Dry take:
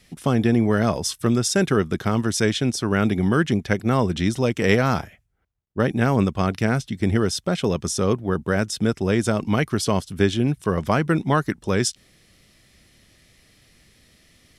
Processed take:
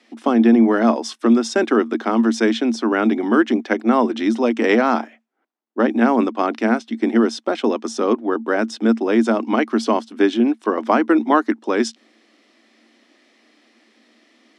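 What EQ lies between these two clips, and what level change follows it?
Chebyshev high-pass with heavy ripple 220 Hz, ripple 6 dB
high-frequency loss of the air 100 metres
low-shelf EQ 350 Hz +5 dB
+7.0 dB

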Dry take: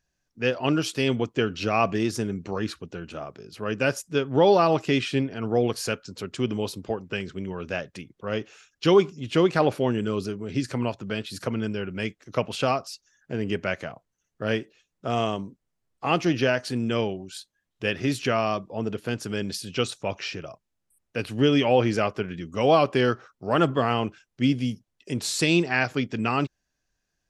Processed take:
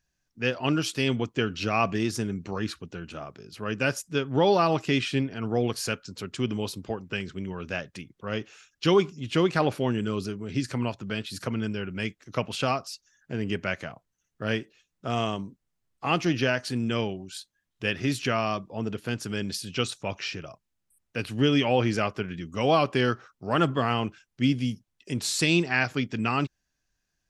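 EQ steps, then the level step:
parametric band 520 Hz −4.5 dB 1.5 octaves
0.0 dB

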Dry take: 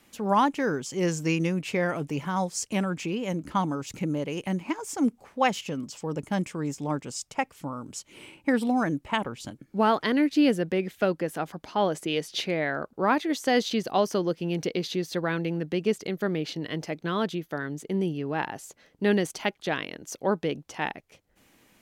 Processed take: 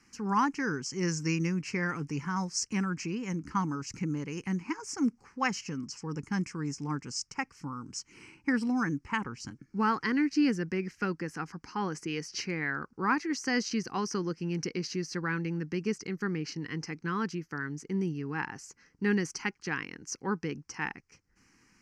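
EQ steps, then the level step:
low-pass with resonance 5,400 Hz, resonance Q 3.8
phaser with its sweep stopped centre 1,500 Hz, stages 4
−1.5 dB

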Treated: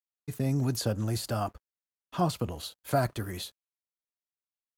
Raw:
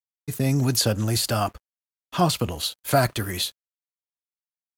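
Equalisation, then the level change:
dynamic equaliser 2,600 Hz, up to −5 dB, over −39 dBFS, Q 0.82
high-shelf EQ 3,400 Hz −6.5 dB
−6.0 dB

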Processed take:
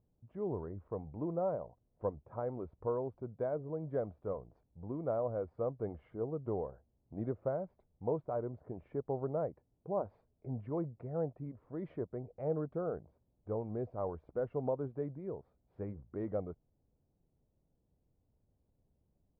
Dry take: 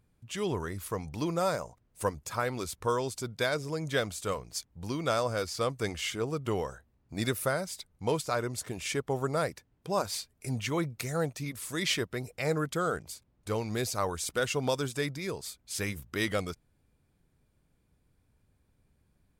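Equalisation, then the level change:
transistor ladder low-pass 880 Hz, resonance 30%
0.0 dB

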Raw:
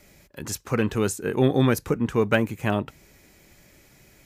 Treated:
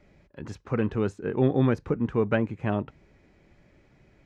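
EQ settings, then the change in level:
head-to-tape spacing loss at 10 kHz 31 dB
−1.5 dB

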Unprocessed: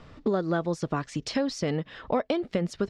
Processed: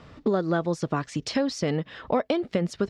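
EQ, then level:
high-pass filter 47 Hz
+2.0 dB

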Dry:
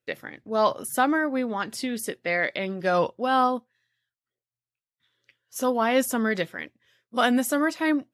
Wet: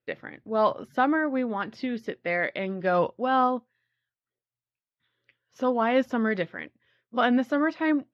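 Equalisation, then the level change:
high-frequency loss of the air 250 metres
parametric band 8,900 Hz −12.5 dB 0.41 octaves
0.0 dB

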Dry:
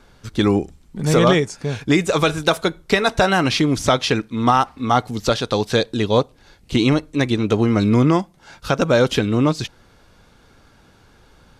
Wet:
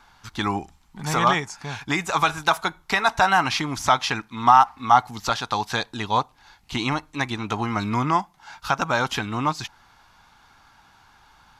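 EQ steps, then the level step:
low shelf with overshoot 660 Hz −8.5 dB, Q 3
dynamic equaliser 3,600 Hz, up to −4 dB, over −35 dBFS, Q 1.1
parametric band 8,800 Hz −6.5 dB 0.27 octaves
−1.0 dB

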